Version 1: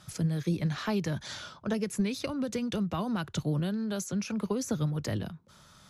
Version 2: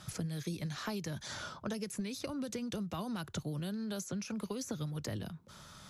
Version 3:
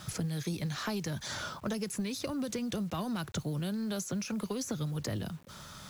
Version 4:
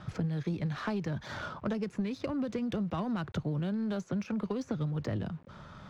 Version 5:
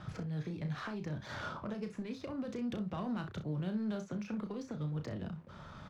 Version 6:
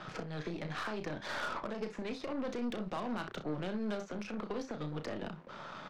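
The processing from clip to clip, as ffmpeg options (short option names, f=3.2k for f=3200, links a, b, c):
-filter_complex "[0:a]acrossover=split=2000|4800[a][b][c];[a]acompressor=threshold=-41dB:ratio=4[d];[b]acompressor=threshold=-58dB:ratio=4[e];[c]acompressor=threshold=-49dB:ratio=4[f];[d][e][f]amix=inputs=3:normalize=0,volume=3dB"
-filter_complex "[0:a]asplit=2[a][b];[b]asoftclip=type=tanh:threshold=-39.5dB,volume=-5dB[c];[a][c]amix=inputs=2:normalize=0,acrusher=bits=9:mix=0:aa=0.000001,volume=1.5dB"
-af "adynamicsmooth=sensitivity=3:basefreq=1.9k,volume=2dB"
-filter_complex "[0:a]alimiter=level_in=6dB:limit=-24dB:level=0:latency=1:release=440,volume=-6dB,asplit=2[a][b];[b]aecho=0:1:33|63:0.422|0.211[c];[a][c]amix=inputs=2:normalize=0,volume=-1.5dB"
-af "highpass=310,lowpass=5.9k,aeval=exprs='0.0299*(cos(1*acos(clip(val(0)/0.0299,-1,1)))-cos(1*PI/2))+0.00237*(cos(8*acos(clip(val(0)/0.0299,-1,1)))-cos(8*PI/2))':c=same,alimiter=level_in=11.5dB:limit=-24dB:level=0:latency=1:release=125,volume=-11.5dB,volume=7dB"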